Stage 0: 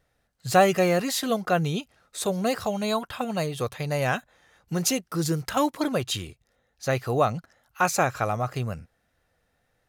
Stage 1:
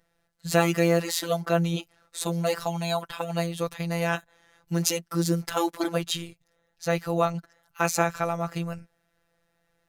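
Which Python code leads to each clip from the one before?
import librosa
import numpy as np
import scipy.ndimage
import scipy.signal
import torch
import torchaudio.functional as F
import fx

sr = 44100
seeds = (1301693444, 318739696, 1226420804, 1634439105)

y = fx.robotise(x, sr, hz=169.0)
y = y * 10.0 ** (1.5 / 20.0)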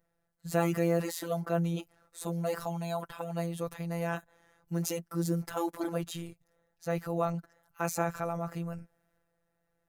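y = fx.transient(x, sr, attack_db=-1, sustain_db=5)
y = fx.peak_eq(y, sr, hz=3800.0, db=-9.5, octaves=2.1)
y = y * 10.0 ** (-5.5 / 20.0)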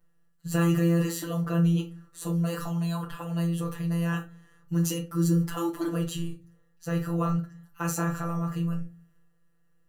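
y = x + 0.93 * np.pad(x, (int(6.6 * sr / 1000.0), 0))[:len(x)]
y = fx.room_shoebox(y, sr, seeds[0], volume_m3=150.0, walls='furnished', distance_m=0.9)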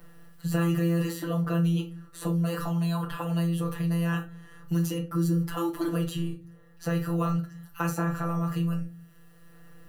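y = fx.peak_eq(x, sr, hz=7000.0, db=-6.0, octaves=0.52)
y = fx.band_squash(y, sr, depth_pct=70)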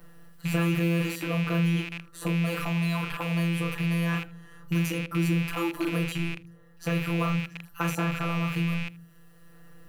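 y = fx.rattle_buzz(x, sr, strikes_db=-40.0, level_db=-25.0)
y = y + 10.0 ** (-23.0 / 20.0) * np.pad(y, (int(79 * sr / 1000.0), 0))[:len(y)]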